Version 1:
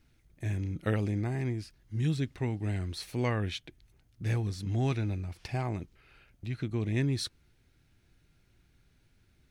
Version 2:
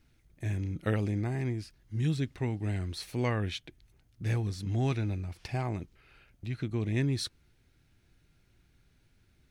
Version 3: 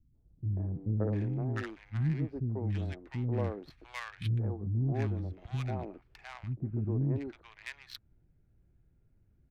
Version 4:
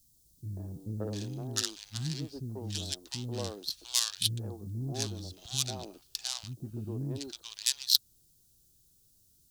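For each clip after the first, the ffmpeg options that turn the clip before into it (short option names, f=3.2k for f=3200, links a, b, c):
-af anull
-filter_complex "[0:a]adynamicsmooth=sensitivity=4.5:basefreq=800,acrossover=split=280|990[a][b][c];[b]adelay=140[d];[c]adelay=700[e];[a][d][e]amix=inputs=3:normalize=0"
-af "lowshelf=f=140:g=-6.5,aexciter=amount=13.2:drive=9.9:freq=3.5k,volume=-2.5dB"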